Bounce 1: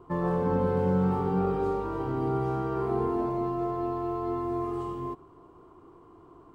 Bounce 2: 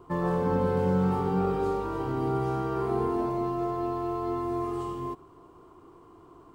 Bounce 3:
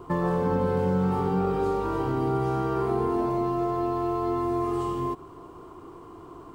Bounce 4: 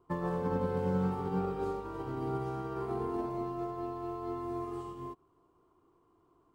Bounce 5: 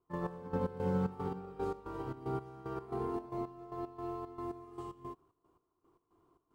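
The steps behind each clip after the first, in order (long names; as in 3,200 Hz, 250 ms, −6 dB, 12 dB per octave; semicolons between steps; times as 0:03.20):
high-shelf EQ 2,700 Hz +8 dB
downward compressor 2 to 1, threshold −35 dBFS, peak gain reduction 8 dB; level +8 dB
expander for the loud parts 2.5 to 1, over −35 dBFS; level −5 dB
gate pattern ".x..x.xx" 113 BPM −12 dB; level −1.5 dB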